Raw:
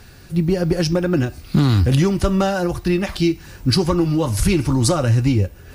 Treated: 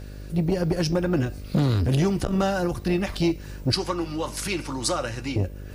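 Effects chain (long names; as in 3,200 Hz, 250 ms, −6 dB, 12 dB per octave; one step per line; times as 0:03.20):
0:03.72–0:05.36: meter weighting curve A
hum with harmonics 50 Hz, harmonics 12, −34 dBFS −6 dB per octave
saturating transformer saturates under 270 Hz
level −4 dB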